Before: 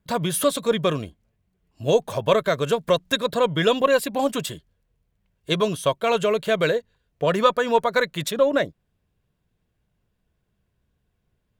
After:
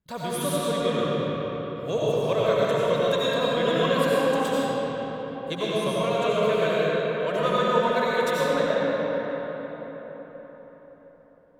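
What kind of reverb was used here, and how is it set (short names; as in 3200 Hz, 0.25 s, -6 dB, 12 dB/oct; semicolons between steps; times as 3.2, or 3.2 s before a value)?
digital reverb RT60 4.9 s, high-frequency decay 0.55×, pre-delay 50 ms, DRR -8.5 dB; gain -10.5 dB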